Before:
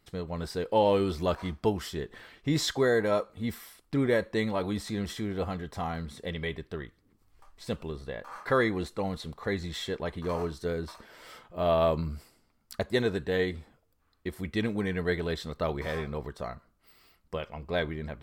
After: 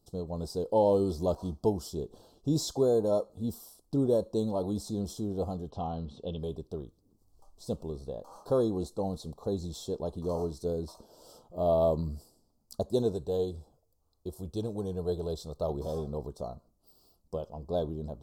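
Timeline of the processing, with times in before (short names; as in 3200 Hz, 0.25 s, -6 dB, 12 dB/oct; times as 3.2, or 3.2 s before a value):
5.7–6.39 synth low-pass 2900 Hz, resonance Q 3.6
13.12–15.7 bell 240 Hz -8.5 dB
whole clip: Chebyshev band-stop 730–5300 Hz, order 2; de-esser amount 65%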